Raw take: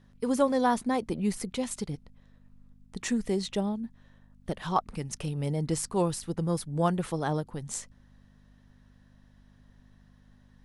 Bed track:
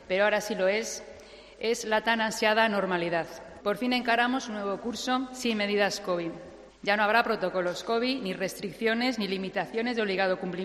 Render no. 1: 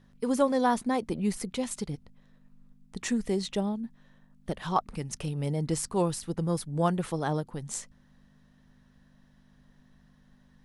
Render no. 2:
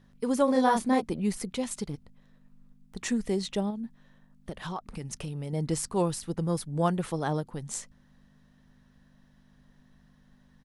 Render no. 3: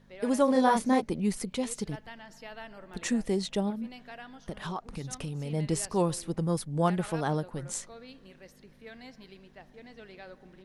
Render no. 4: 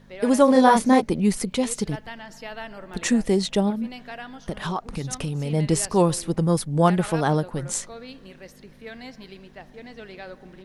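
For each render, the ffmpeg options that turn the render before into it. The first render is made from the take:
ffmpeg -i in.wav -af "bandreject=frequency=50:width_type=h:width=4,bandreject=frequency=100:width_type=h:width=4" out.wav
ffmpeg -i in.wav -filter_complex "[0:a]asplit=3[link_01][link_02][link_03];[link_01]afade=type=out:start_time=0.47:duration=0.02[link_04];[link_02]asplit=2[link_05][link_06];[link_06]adelay=31,volume=-2dB[link_07];[link_05][link_07]amix=inputs=2:normalize=0,afade=type=in:start_time=0.47:duration=0.02,afade=type=out:start_time=1:duration=0.02[link_08];[link_03]afade=type=in:start_time=1:duration=0.02[link_09];[link_04][link_08][link_09]amix=inputs=3:normalize=0,asettb=1/sr,asplit=3[link_10][link_11][link_12];[link_10]atrim=end=1.864[link_13];[link_11]atrim=start=1.86:end=3,asetpts=PTS-STARTPTS,afade=type=in:duration=0.004:curve=qsin,afade=type=out:start_time=1.136:duration=0.004:curve=qsin,aeval=exprs='clip(val(0),-1,0.0119)':channel_layout=same[link_14];[link_12]atrim=start=2.996[link_15];[link_13][link_14]acrossfade=duration=0.004:curve1=hsin:curve2=qsin[link_16];[link_16][link_15]acrossfade=duration=0.004:curve1=qsin:curve2=hsin,asettb=1/sr,asplit=3[link_17][link_18][link_19];[link_17]atrim=end=3.704[link_20];[link_18]atrim=start=3.7:end=5.53,asetpts=PTS-STARTPTS,afade=type=in:duration=0.004:curve=qsin,afade=type=out:start_time=1.826:duration=0.004:curve=qsin,acompressor=threshold=-31dB:ratio=6:attack=3.2:release=140:knee=1:detection=peak[link_21];[link_19]atrim=start=5.526[link_22];[link_20][link_21]acrossfade=duration=0.004:curve1=hsin:curve2=qsin[link_23];[link_23][link_22]acrossfade=duration=0.004:curve1=qsin:curve2=hsin" out.wav
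ffmpeg -i in.wav -i bed.wav -filter_complex "[1:a]volume=-21dB[link_01];[0:a][link_01]amix=inputs=2:normalize=0" out.wav
ffmpeg -i in.wav -af "volume=8dB" out.wav

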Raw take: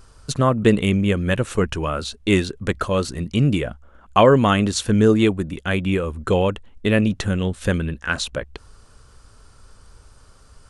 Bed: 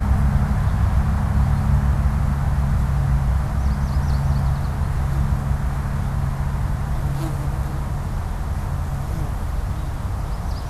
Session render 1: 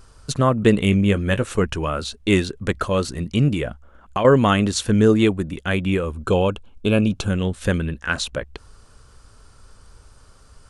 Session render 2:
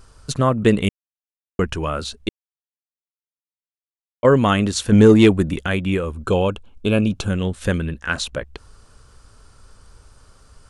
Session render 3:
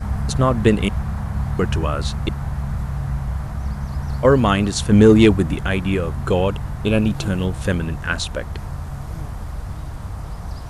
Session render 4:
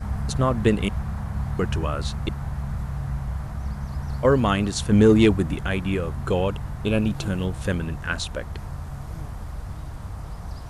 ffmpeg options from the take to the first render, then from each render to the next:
ffmpeg -i in.wav -filter_complex "[0:a]asettb=1/sr,asplit=3[link_01][link_02][link_03];[link_01]atrim=end=0.794[link_04];[link_02]atrim=start=0.79:end=1.44,asetpts=PTS-STARTPTS,afade=type=in:duration=0.004:curve=qsin,afade=type=out:start_time=0.646:duration=0.004:curve=qsin,asplit=2[link_05][link_06];[link_06]adelay=20,volume=-11.5dB[link_07];[link_05][link_07]amix=inputs=2:normalize=0,atrim=end_sample=28665[link_08];[link_03]atrim=start=1.436[link_09];[link_04][link_08]acrossfade=duration=0.004:curve1=hsin:curve2=qsin[link_10];[link_10][link_09]acrossfade=duration=0.004:curve1=qsin:curve2=hsin,asettb=1/sr,asplit=3[link_11][link_12][link_13];[link_11]atrim=end=3.484[link_14];[link_12]atrim=start=3.48:end=4.25,asetpts=PTS-STARTPTS,afade=type=in:duration=0.004:curve=qsin,afade=type=out:start_time=0.766:duration=0.004:curve=qsin,acompressor=threshold=-18dB:ratio=6:attack=3.2:release=140:knee=1:detection=peak[link_15];[link_13]atrim=start=4.246[link_16];[link_14][link_15]acrossfade=duration=0.004:curve1=hsin:curve2=qsin[link_17];[link_17][link_16]acrossfade=duration=0.004:curve1=qsin:curve2=hsin,asettb=1/sr,asplit=3[link_18][link_19][link_20];[link_18]atrim=end=6.144[link_21];[link_19]atrim=start=6.14:end=7.3,asetpts=PTS-STARTPTS,afade=type=in:duration=0.004:curve=qsin,afade=type=out:start_time=1.156:duration=0.004:curve=qsin,asuperstop=centerf=1900:order=8:qfactor=4[link_22];[link_20]atrim=start=7.296[link_23];[link_21][link_22]acrossfade=duration=0.004:curve1=hsin:curve2=qsin[link_24];[link_24][link_23]acrossfade=duration=0.004:curve1=qsin:curve2=hsin" out.wav
ffmpeg -i in.wav -filter_complex "[0:a]asettb=1/sr,asplit=3[link_01][link_02][link_03];[link_01]atrim=end=4.924[link_04];[link_02]atrim=start=4.92:end=5.67,asetpts=PTS-STARTPTS,afade=type=in:duration=0.004:curve=qsin,afade=type=out:start_time=0.746:duration=0.004:curve=qsin,acontrast=52[link_05];[link_03]atrim=start=5.666[link_06];[link_04][link_05]acrossfade=duration=0.004:curve1=hsin:curve2=qsin[link_07];[link_07][link_06]acrossfade=duration=0.004:curve1=qsin:curve2=hsin,asplit=5[link_08][link_09][link_10][link_11][link_12];[link_08]atrim=end=0.89,asetpts=PTS-STARTPTS,afade=type=out:start_time=0.886:duration=0.004:curve=hsin[link_13];[link_09]atrim=start=0.89:end=1.59,asetpts=PTS-STARTPTS,volume=0[link_14];[link_10]atrim=start=1.59:end=2.29,asetpts=PTS-STARTPTS,afade=type=in:duration=0.004:curve=hsin,afade=type=out:start_time=0.696:duration=0.004:curve=hsin[link_15];[link_11]atrim=start=2.29:end=4.23,asetpts=PTS-STARTPTS,volume=0[link_16];[link_12]atrim=start=4.23,asetpts=PTS-STARTPTS,afade=type=in:duration=0.004:curve=hsin[link_17];[link_13][link_14][link_15][link_16][link_17]concat=n=5:v=0:a=1" out.wav
ffmpeg -i in.wav -i bed.wav -filter_complex "[1:a]volume=-5dB[link_01];[0:a][link_01]amix=inputs=2:normalize=0" out.wav
ffmpeg -i in.wav -af "volume=-4.5dB" out.wav

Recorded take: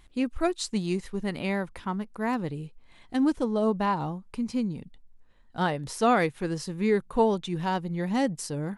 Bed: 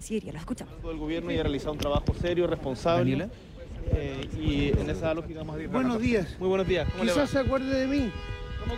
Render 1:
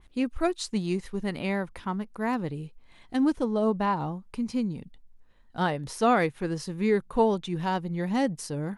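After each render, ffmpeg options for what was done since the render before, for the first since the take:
ffmpeg -i in.wav -af "bandreject=frequency=7600:width=16,adynamicequalizer=threshold=0.00794:dfrequency=2800:dqfactor=0.7:tfrequency=2800:tqfactor=0.7:attack=5:release=100:ratio=0.375:range=2:mode=cutabove:tftype=highshelf" out.wav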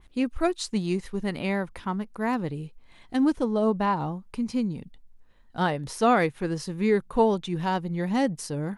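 ffmpeg -i in.wav -af "volume=1.5dB" out.wav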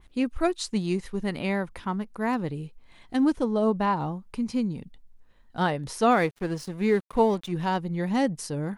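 ffmpeg -i in.wav -filter_complex "[0:a]asettb=1/sr,asplit=3[link_01][link_02][link_03];[link_01]atrim=end=6.114[link_04];[link_02]atrim=start=6.11:end=7.52,asetpts=PTS-STARTPTS,afade=type=in:duration=0.004:curve=qsin,afade=type=out:start_time=1.406:duration=0.004:curve=qsin,aeval=exprs='sgn(val(0))*max(abs(val(0))-0.00596,0)':channel_layout=same[link_05];[link_03]atrim=start=7.516[link_06];[link_04][link_05]acrossfade=duration=0.004:curve1=hsin:curve2=qsin[link_07];[link_07][link_06]acrossfade=duration=0.004:curve1=qsin:curve2=hsin" out.wav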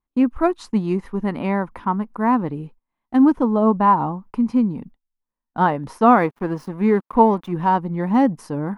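ffmpeg -i in.wav -af "equalizer=frequency=250:width_type=o:width=1:gain=9,equalizer=frequency=1000:width_type=o:width=1:gain=12,equalizer=frequency=4000:width_type=o:width=1:gain=-6,equalizer=frequency=8000:width_type=o:width=1:gain=-10,agate=range=-31dB:threshold=-40dB:ratio=16:detection=peak" out.wav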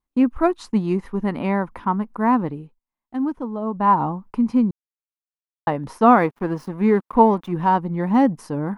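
ffmpeg -i in.wav -filter_complex "[0:a]asplit=5[link_01][link_02][link_03][link_04][link_05];[link_01]atrim=end=2.68,asetpts=PTS-STARTPTS,afade=type=out:start_time=2.45:duration=0.23:silence=0.334965[link_06];[link_02]atrim=start=2.68:end=3.71,asetpts=PTS-STARTPTS,volume=-9.5dB[link_07];[link_03]atrim=start=3.71:end=4.71,asetpts=PTS-STARTPTS,afade=type=in:duration=0.23:silence=0.334965,afade=type=out:start_time=0.996:duration=0.004:curve=hsin[link_08];[link_04]atrim=start=4.71:end=5.67,asetpts=PTS-STARTPTS,volume=0[link_09];[link_05]atrim=start=5.67,asetpts=PTS-STARTPTS,afade=type=in:duration=0.004:curve=hsin[link_10];[link_06][link_07][link_08][link_09][link_10]concat=n=5:v=0:a=1" out.wav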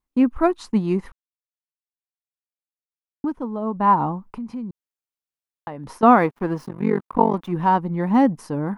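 ffmpeg -i in.wav -filter_complex "[0:a]asettb=1/sr,asplit=3[link_01][link_02][link_03];[link_01]atrim=end=4.284[link_04];[link_02]atrim=start=4.28:end=6.03,asetpts=PTS-STARTPTS,afade=type=in:duration=0.004:curve=qsin,afade=type=out:start_time=1.746:duration=0.004:curve=qsin,acompressor=threshold=-32dB:ratio=3:attack=3.2:release=140:knee=1:detection=peak[link_05];[link_03]atrim=start=6.026[link_06];[link_04][link_05]acrossfade=duration=0.004:curve1=hsin:curve2=qsin[link_07];[link_07][link_06]acrossfade=duration=0.004:curve1=qsin:curve2=hsin,asettb=1/sr,asplit=3[link_08][link_09][link_10];[link_08]atrim=end=6.664[link_11];[link_09]atrim=start=6.66:end=7.34,asetpts=PTS-STARTPTS,afade=type=in:duration=0.004:curve=qsin,afade=type=out:start_time=0.676:duration=0.004:curve=qsin,tremolo=f=47:d=0.974[link_12];[link_10]atrim=start=7.336[link_13];[link_11][link_12]acrossfade=duration=0.004:curve1=hsin:curve2=qsin[link_14];[link_14][link_13]acrossfade=duration=0.004:curve1=qsin:curve2=hsin,asplit=3[link_15][link_16][link_17];[link_15]atrim=end=1.12,asetpts=PTS-STARTPTS,afade=type=out:start_time=1.116:duration=0.004:curve=hsin[link_18];[link_16]atrim=start=1.12:end=3.24,asetpts=PTS-STARTPTS,volume=0[link_19];[link_17]atrim=start=3.24,asetpts=PTS-STARTPTS,afade=type=in:duration=0.004:curve=hsin[link_20];[link_18][link_19][link_20]concat=n=3:v=0:a=1" out.wav

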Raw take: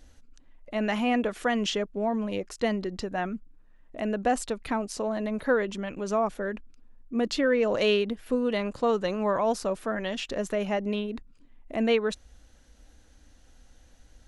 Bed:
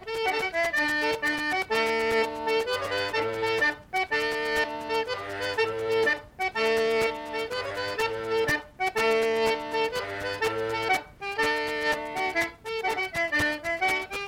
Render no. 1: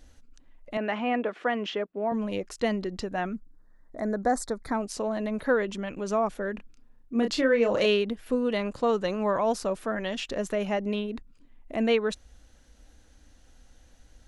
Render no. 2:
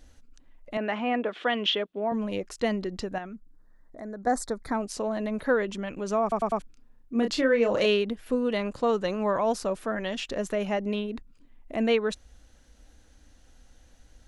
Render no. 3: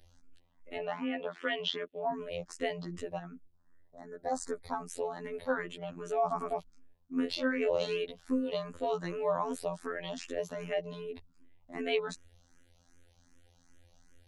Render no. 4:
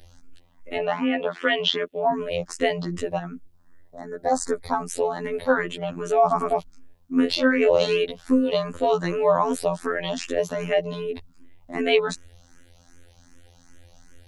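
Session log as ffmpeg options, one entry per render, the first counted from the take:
ffmpeg -i in.wav -filter_complex "[0:a]asettb=1/sr,asplit=3[link_01][link_02][link_03];[link_01]atrim=end=0.774[link_04];[link_02]atrim=start=0.77:end=2.12,asetpts=PTS-STARTPTS,afade=type=in:duration=0.004:curve=qsin,afade=type=out:start_time=1.346:duration=0.004:curve=qsin,highpass=270,lowpass=2600[link_05];[link_03]atrim=start=2.116[link_06];[link_04][link_05]acrossfade=duration=0.004:curve1=hsin:curve2=qsin[link_07];[link_07][link_06]acrossfade=duration=0.004:curve1=qsin:curve2=hsin,asplit=3[link_08][link_09][link_10];[link_08]afade=type=out:start_time=3.35:duration=0.02[link_11];[link_09]asuperstop=centerf=2800:order=4:qfactor=1.4,afade=type=in:start_time=3.35:duration=0.02,afade=type=out:start_time=4.73:duration=0.02[link_12];[link_10]afade=type=in:start_time=4.73:duration=0.02[link_13];[link_11][link_12][link_13]amix=inputs=3:normalize=0,asettb=1/sr,asplit=3[link_14][link_15][link_16];[link_14]atrim=end=6.554[link_17];[link_15]atrim=start=6.55:end=7.86,asetpts=PTS-STARTPTS,afade=type=in:duration=0.004:curve=qsin,afade=type=out:start_time=1.306:duration=0.004:curve=qsin,asplit=2[link_18][link_19];[link_19]adelay=30,volume=-6dB[link_20];[link_18][link_20]amix=inputs=2:normalize=0,atrim=end_sample=57771[link_21];[link_16]atrim=start=7.856[link_22];[link_17][link_21]acrossfade=duration=0.004:curve1=hsin:curve2=qsin[link_23];[link_23][link_22]acrossfade=duration=0.004:curve1=qsin:curve2=hsin" out.wav
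ffmpeg -i in.wav -filter_complex "[0:a]asettb=1/sr,asplit=3[link_01][link_02][link_03];[link_01]atrim=end=1.324[link_04];[link_02]atrim=start=1.32:end=2,asetpts=PTS-STARTPTS,afade=type=in:duration=0.004:curve=qsin,afade=type=out:start_time=0.676:duration=0.004:curve=qsin,equalizer=frequency=3400:width_type=o:width=0.7:gain=13.5[link_05];[link_03]atrim=start=1.996[link_06];[link_04][link_05]acrossfade=duration=0.004:curve1=hsin:curve2=qsin[link_07];[link_07][link_06]acrossfade=duration=0.004:curve1=qsin:curve2=hsin,asettb=1/sr,asplit=3[link_08][link_09][link_10];[link_08]atrim=end=3.184[link_11];[link_09]atrim=start=3.18:end=4.27,asetpts=PTS-STARTPTS,afade=type=in:duration=0.004:curve=qsin,afade=type=out:start_time=1.086:duration=0.004:curve=qsin,acompressor=threshold=-50dB:ratio=1.5:attack=3.2:release=140:knee=1:detection=peak[link_12];[link_10]atrim=start=4.266[link_13];[link_11][link_12]acrossfade=duration=0.004:curve1=hsin:curve2=qsin[link_14];[link_14][link_13]acrossfade=duration=0.004:curve1=qsin:curve2=hsin,asplit=5[link_15][link_16][link_17][link_18][link_19];[link_15]atrim=end=6.322[link_20];[link_16]atrim=start=6.218:end=6.322[link_21];[link_17]atrim=start=6.218:end=6.322[link_22];[link_18]atrim=start=6.218:end=6.322[link_23];[link_19]atrim=start=6.618[link_24];[link_20][link_21]acrossfade=duration=0.004:curve1=hsin:curve2=hsin[link_25];[link_25][link_22]acrossfade=duration=0.004:curve1=hsin:curve2=hsin[link_26];[link_26][link_23]acrossfade=duration=0.004:curve1=hsin:curve2=hsin[link_27];[link_27][link_24]acrossfade=duration=0.004:curve1=hsin:curve2=hsin" out.wav
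ffmpeg -i in.wav -filter_complex "[0:a]afftfilt=real='hypot(re,im)*cos(PI*b)':imag='0':win_size=2048:overlap=0.75,asplit=2[link_01][link_02];[link_02]afreqshift=2.6[link_03];[link_01][link_03]amix=inputs=2:normalize=1" out.wav
ffmpeg -i in.wav -af "volume=11.5dB" out.wav

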